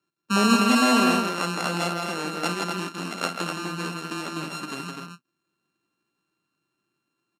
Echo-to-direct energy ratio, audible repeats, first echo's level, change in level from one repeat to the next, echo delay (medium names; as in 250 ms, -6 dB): -1.5 dB, 3, -11.0 dB, no regular repeats, 52 ms